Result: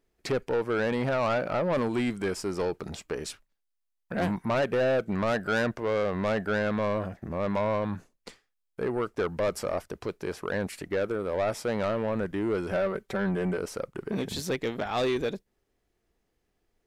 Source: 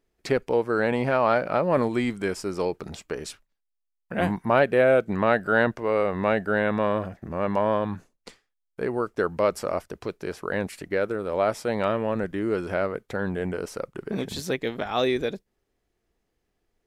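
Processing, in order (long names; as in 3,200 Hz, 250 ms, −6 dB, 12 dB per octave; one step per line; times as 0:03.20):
0:12.71–0:13.58: comb filter 5.2 ms, depth 68%
soft clipping −21.5 dBFS, distortion −9 dB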